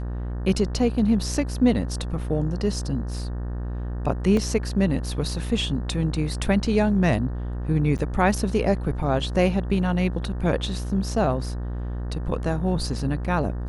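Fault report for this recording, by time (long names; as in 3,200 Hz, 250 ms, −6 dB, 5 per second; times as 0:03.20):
mains buzz 60 Hz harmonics 31 −29 dBFS
0:04.37: drop-out 2.3 ms
0:07.98–0:07.99: drop-out 8.8 ms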